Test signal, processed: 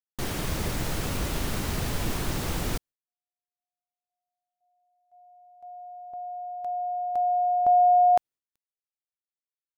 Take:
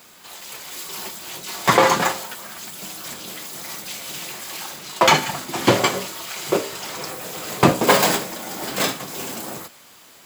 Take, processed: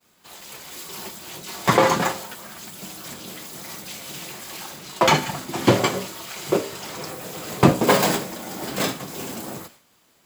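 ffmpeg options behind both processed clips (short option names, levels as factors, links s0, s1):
-af "lowshelf=f=430:g=7,agate=range=0.0224:threshold=0.0112:ratio=3:detection=peak,volume=0.631"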